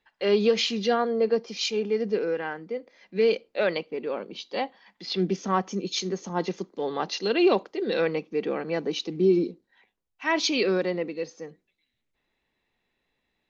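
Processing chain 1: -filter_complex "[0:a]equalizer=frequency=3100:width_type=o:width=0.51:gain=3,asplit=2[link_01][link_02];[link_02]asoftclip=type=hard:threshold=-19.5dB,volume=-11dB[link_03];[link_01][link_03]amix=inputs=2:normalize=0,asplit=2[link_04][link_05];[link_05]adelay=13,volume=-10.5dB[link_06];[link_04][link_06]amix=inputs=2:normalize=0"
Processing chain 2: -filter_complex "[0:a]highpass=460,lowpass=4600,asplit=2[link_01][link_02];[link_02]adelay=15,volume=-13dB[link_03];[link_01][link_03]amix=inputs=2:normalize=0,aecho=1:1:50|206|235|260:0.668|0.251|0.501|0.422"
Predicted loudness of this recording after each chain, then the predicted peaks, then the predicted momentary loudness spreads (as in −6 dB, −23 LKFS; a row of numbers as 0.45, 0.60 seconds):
−24.0, −27.0 LKFS; −8.5, −10.5 dBFS; 12, 10 LU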